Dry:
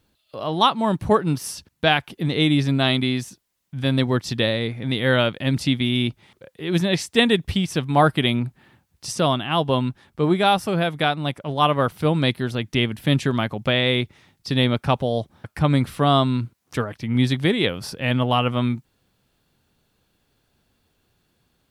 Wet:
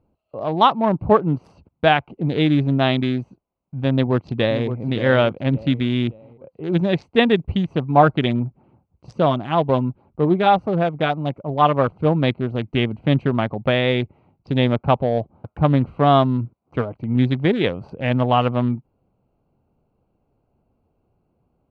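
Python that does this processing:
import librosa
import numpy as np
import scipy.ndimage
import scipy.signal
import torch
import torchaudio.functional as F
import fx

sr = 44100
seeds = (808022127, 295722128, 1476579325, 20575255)

y = fx.echo_throw(x, sr, start_s=3.93, length_s=0.73, ms=570, feedback_pct=40, wet_db=-9.5)
y = fx.filter_lfo_notch(y, sr, shape='sine', hz=6.3, low_hz=680.0, high_hz=3200.0, q=2.3, at=(7.78, 12.22))
y = fx.wiener(y, sr, points=25)
y = scipy.signal.sosfilt(scipy.signal.butter(2, 2800.0, 'lowpass', fs=sr, output='sos'), y)
y = fx.peak_eq(y, sr, hz=700.0, db=4.0, octaves=1.1)
y = y * 10.0 ** (1.5 / 20.0)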